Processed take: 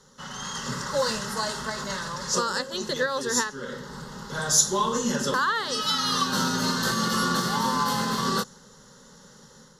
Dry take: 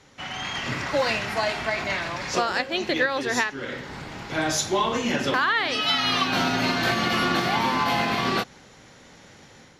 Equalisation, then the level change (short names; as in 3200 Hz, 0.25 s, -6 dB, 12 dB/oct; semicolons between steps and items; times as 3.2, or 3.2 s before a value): dynamic EQ 8100 Hz, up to +7 dB, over -46 dBFS, Q 1.1; tone controls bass +3 dB, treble +5 dB; fixed phaser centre 470 Hz, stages 8; 0.0 dB